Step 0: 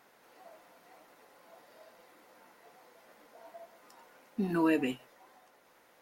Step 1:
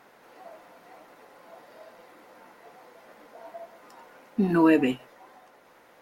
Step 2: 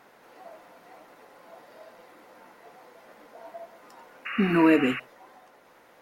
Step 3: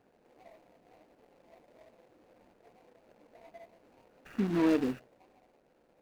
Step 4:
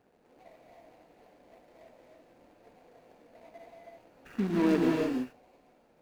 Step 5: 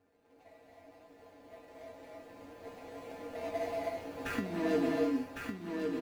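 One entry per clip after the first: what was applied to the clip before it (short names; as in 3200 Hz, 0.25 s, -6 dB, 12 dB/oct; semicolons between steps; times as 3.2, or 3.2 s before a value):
high shelf 3400 Hz -7.5 dB; gain +8.5 dB
painted sound noise, 4.25–5, 1100–2900 Hz -34 dBFS
median filter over 41 samples; gain -6 dB
non-linear reverb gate 0.35 s rising, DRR -0.5 dB
recorder AGC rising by 5.5 dB/s; resonator 93 Hz, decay 0.22 s, harmonics odd, mix 90%; echo 1.106 s -4.5 dB; gain +5 dB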